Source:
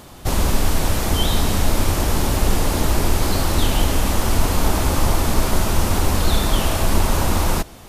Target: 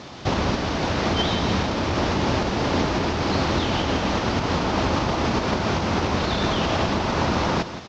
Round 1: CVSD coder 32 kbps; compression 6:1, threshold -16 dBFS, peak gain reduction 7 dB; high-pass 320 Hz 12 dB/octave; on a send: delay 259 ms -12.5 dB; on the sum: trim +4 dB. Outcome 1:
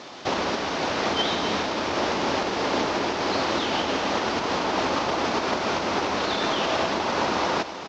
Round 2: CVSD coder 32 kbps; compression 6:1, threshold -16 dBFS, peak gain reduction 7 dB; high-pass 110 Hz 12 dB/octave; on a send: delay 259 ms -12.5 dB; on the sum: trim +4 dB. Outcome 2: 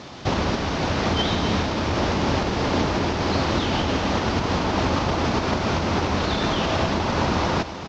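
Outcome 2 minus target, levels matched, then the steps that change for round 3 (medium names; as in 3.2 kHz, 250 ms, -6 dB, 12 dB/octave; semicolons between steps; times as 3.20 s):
echo 88 ms late
change: delay 171 ms -12.5 dB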